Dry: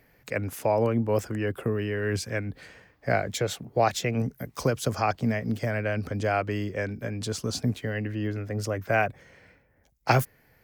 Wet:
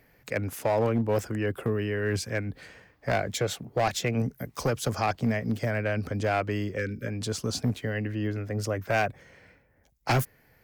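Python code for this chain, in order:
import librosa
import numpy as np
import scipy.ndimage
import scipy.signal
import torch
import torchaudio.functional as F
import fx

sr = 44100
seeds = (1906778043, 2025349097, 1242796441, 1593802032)

y = fx.spec_erase(x, sr, start_s=6.77, length_s=0.3, low_hz=560.0, high_hz=1200.0)
y = np.clip(10.0 ** (19.0 / 20.0) * y, -1.0, 1.0) / 10.0 ** (19.0 / 20.0)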